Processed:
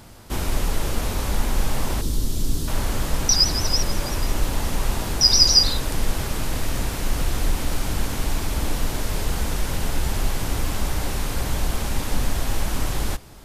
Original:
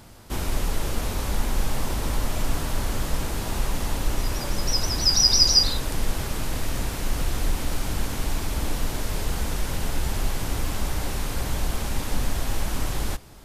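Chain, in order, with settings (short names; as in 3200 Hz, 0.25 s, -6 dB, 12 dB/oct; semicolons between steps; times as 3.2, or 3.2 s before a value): 2.01–2.68 band shelf 1200 Hz -14 dB 2.6 oct; 3.29–5.21 reverse; gain +2.5 dB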